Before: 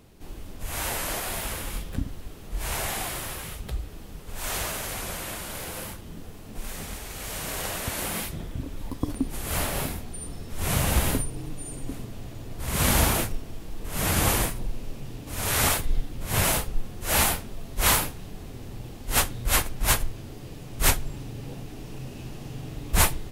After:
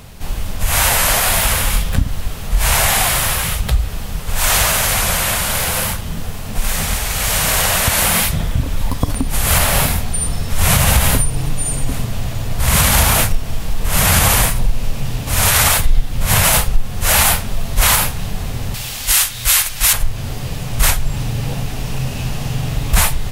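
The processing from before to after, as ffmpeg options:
-filter_complex "[0:a]asettb=1/sr,asplit=3[a][b][c];[a]atrim=end=18.744[d];[b]atrim=start=18.74:end=19.93,asetpts=PTS-STARTPTS,afade=t=in:d=0.004:c=qsin,afade=t=out:st=1.186:d=0.004:c=qsin,tiltshelf=f=1.1k:g=-10[e];[c]atrim=start=19.926[f];[d][e]acrossfade=d=0.004:c1=hsin:c2=qsin[g];[g][f]acrossfade=d=0.004:c1=qsin:c2=hsin,acompressor=threshold=-29dB:ratio=2,equalizer=f=330:w=1.5:g=-13.5,alimiter=level_in=19.5dB:limit=-1dB:release=50:level=0:latency=1,volume=-1dB"

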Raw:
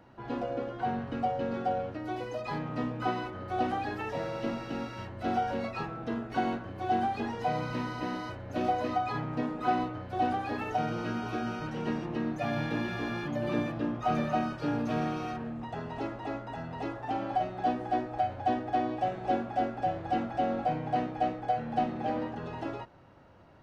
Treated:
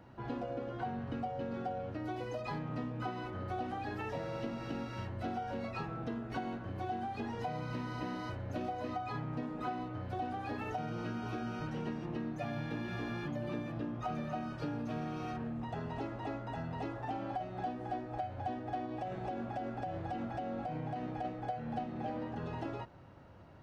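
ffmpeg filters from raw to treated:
-filter_complex "[0:a]asettb=1/sr,asplit=3[a][b][c];[a]atrim=end=18.854[d];[b]atrim=start=18.85:end=21.25,asetpts=PTS-STARTPTS,afade=t=in:d=0.004:c=qsin,afade=t=out:st=2.396:d=0.004:c=qsin,acompressor=threshold=-30dB:ratio=6:attack=3.2:release=140:knee=1:detection=peak[e];[c]atrim=start=21.246[f];[d][e]acrossfade=d=0.004:c1=hsin:c2=qsin[g];[g][f]acrossfade=d=0.004:c1=qsin:c2=hsin,equalizer=f=92:w=0.53:g=5,acompressor=threshold=-34dB:ratio=6,volume=-1.5dB"

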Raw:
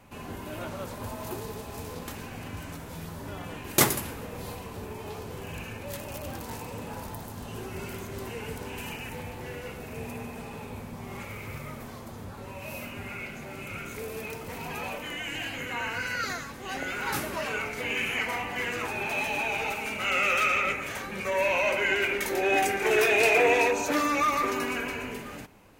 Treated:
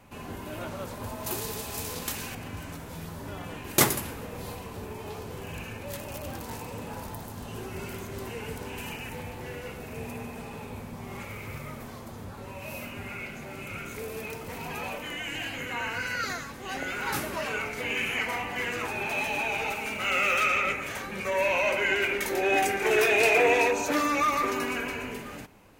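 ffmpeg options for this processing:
-filter_complex "[0:a]asettb=1/sr,asplit=3[a][b][c];[a]atrim=end=1.264[d];[b]atrim=start=1.26:end=2.35,asetpts=PTS-STARTPTS,afade=t=in:d=0.004:c=qsin,afade=t=out:st=1.086:d=0.004:c=qsin,highshelf=f=2.2k:g=11.5[e];[c]atrim=start=2.346[f];[d][e]acrossfade=d=0.004:c1=hsin:c2=qsin[g];[g][f]acrossfade=d=0.004:c1=qsin:c2=hsin,asettb=1/sr,asplit=3[h][i][j];[h]atrim=end=19.804[k];[i]atrim=start=19.8:end=20.41,asetpts=PTS-STARTPTS,afade=t=in:d=0.004:c=qsin,afade=t=out:st=0.606:d=0.004:c=qsin,acrusher=bits=7:mode=log:mix=0:aa=0.000001[l];[j]atrim=start=20.406[m];[k][l]acrossfade=d=0.004:c1=hsin:c2=qsin[n];[n][m]acrossfade=d=0.004:c1=qsin:c2=hsin"

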